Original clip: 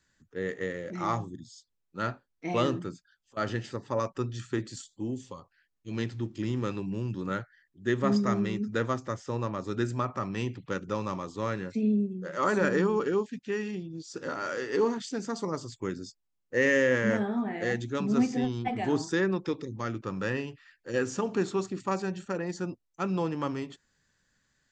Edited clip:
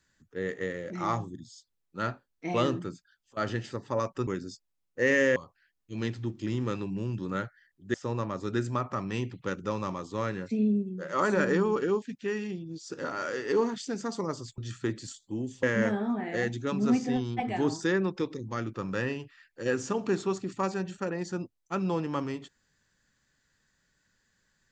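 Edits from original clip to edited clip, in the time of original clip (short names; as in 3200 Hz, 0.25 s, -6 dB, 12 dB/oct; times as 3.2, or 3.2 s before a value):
4.27–5.32 swap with 15.82–16.91
7.9–9.18 cut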